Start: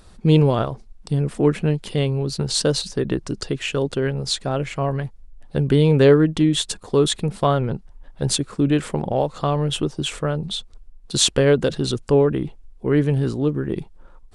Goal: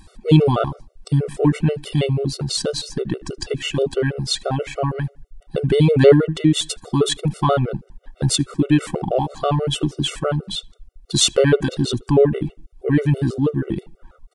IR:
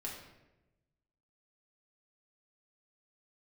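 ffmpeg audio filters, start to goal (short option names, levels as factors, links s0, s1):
-filter_complex "[0:a]asplit=2[s0][s1];[s1]adelay=76,lowpass=f=2500:p=1,volume=0.0708,asplit=2[s2][s3];[s3]adelay=76,lowpass=f=2500:p=1,volume=0.4,asplit=2[s4][s5];[s5]adelay=76,lowpass=f=2500:p=1,volume=0.4[s6];[s2][s4][s6]amix=inputs=3:normalize=0[s7];[s0][s7]amix=inputs=2:normalize=0,asettb=1/sr,asplit=3[s8][s9][s10];[s8]atrim=end=2.384[s11];[s9]atrim=start=2.38:end=3.2,asetpts=PTS-STARTPTS,afade=t=in:d=0.004:c=qsin,afade=t=out:st=0.816:d=0.004:c=qsin,acompressor=threshold=0.0891:ratio=6[s12];[s10]atrim=start=3.196[s13];[s11][s12]acrossfade=d=0.004:c1=hsin:c2=qsin[s14];[s14][s13]acrossfade=d=0.004:c1=qsin:c2=hsin,afftfilt=real='re*gt(sin(2*PI*6.2*pts/sr)*(1-2*mod(floor(b*sr/1024/380),2)),0)':imag='im*gt(sin(2*PI*6.2*pts/sr)*(1-2*mod(floor(b*sr/1024/380),2)),0)':win_size=1024:overlap=0.75,volume=1.68"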